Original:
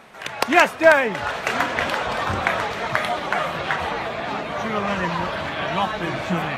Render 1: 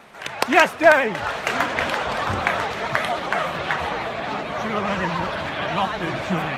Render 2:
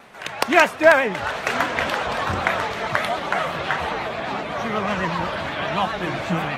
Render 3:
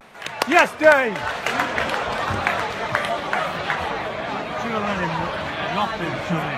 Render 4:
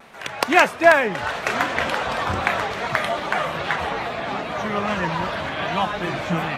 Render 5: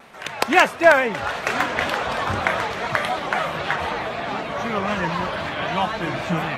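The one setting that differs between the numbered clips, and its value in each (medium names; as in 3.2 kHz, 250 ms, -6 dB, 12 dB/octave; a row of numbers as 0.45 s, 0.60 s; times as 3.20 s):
vibrato, rate: 13 Hz, 8 Hz, 0.91 Hz, 2.5 Hz, 3.9 Hz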